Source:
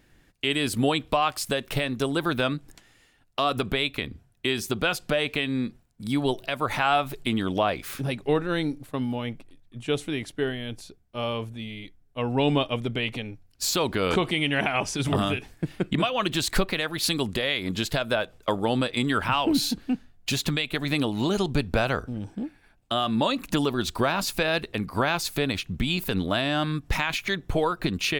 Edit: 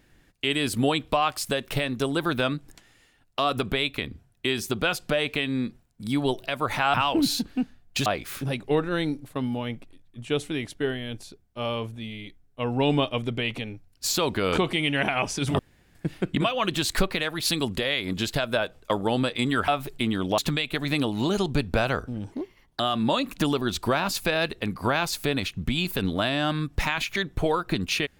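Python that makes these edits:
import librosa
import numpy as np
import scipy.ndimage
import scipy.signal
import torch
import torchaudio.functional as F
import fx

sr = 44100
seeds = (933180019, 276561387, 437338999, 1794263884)

y = fx.edit(x, sr, fx.swap(start_s=6.94, length_s=0.7, other_s=19.26, other_length_s=1.12),
    fx.room_tone_fill(start_s=15.17, length_s=0.36),
    fx.speed_span(start_s=22.32, length_s=0.6, speed=1.26), tone=tone)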